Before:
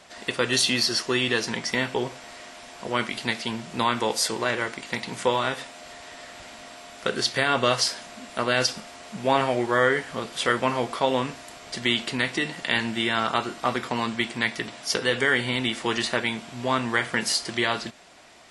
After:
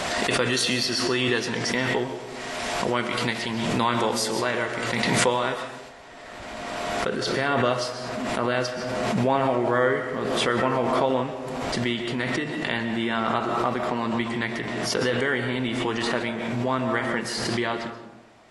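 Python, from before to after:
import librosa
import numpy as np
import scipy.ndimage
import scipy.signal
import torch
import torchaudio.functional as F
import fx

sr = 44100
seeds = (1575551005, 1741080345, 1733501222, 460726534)

y = fx.high_shelf(x, sr, hz=2100.0, db=fx.steps((0.0, -4.0), (5.88, -11.5)))
y = fx.rev_freeverb(y, sr, rt60_s=1.0, hf_ratio=0.4, predelay_ms=90, drr_db=8.0)
y = fx.pre_swell(y, sr, db_per_s=21.0)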